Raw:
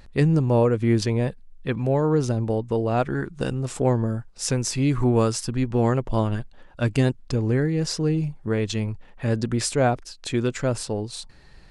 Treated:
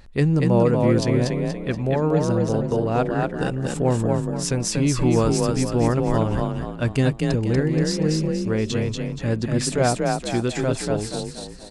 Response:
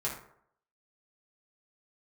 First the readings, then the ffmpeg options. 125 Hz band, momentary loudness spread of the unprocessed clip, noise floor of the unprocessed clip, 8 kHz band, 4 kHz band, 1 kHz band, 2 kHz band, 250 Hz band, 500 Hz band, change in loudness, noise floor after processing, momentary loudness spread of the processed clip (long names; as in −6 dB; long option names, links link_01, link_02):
+1.5 dB, 9 LU, −48 dBFS, +2.0 dB, +2.0 dB, +2.5 dB, +2.0 dB, +2.5 dB, +2.0 dB, +2.0 dB, −35 dBFS, 7 LU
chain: -filter_complex "[0:a]asplit=6[link_01][link_02][link_03][link_04][link_05][link_06];[link_02]adelay=238,afreqshift=31,volume=-3dB[link_07];[link_03]adelay=476,afreqshift=62,volume=-11dB[link_08];[link_04]adelay=714,afreqshift=93,volume=-18.9dB[link_09];[link_05]adelay=952,afreqshift=124,volume=-26.9dB[link_10];[link_06]adelay=1190,afreqshift=155,volume=-34.8dB[link_11];[link_01][link_07][link_08][link_09][link_10][link_11]amix=inputs=6:normalize=0"